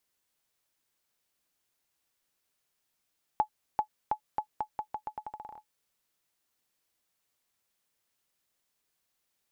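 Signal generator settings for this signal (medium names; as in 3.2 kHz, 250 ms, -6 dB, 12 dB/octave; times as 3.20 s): bouncing ball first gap 0.39 s, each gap 0.83, 853 Hz, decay 88 ms -15 dBFS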